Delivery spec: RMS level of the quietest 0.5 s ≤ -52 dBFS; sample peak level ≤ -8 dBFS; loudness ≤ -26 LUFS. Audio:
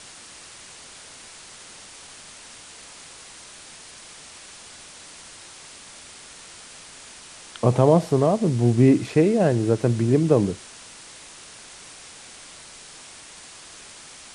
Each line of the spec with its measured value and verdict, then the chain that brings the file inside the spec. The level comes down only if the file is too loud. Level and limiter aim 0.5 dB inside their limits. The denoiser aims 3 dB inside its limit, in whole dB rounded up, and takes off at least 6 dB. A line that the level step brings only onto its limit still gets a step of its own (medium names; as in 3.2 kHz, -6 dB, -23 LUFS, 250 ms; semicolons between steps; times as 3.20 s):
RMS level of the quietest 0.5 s -44 dBFS: fail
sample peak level -4.0 dBFS: fail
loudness -20.0 LUFS: fail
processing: noise reduction 6 dB, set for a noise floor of -44 dBFS; trim -6.5 dB